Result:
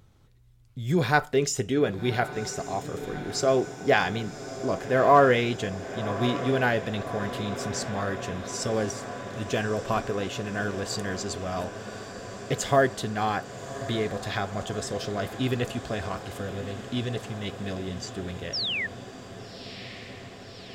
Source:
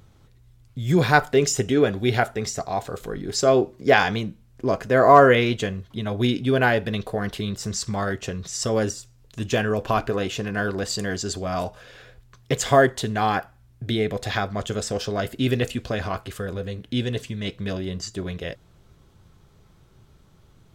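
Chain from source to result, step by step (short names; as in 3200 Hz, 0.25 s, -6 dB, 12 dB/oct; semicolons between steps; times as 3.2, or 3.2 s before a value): painted sound fall, 18.53–18.87, 1700–5800 Hz -24 dBFS; on a send: diffused feedback echo 1.157 s, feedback 77%, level -13 dB; on the sum: gain -5 dB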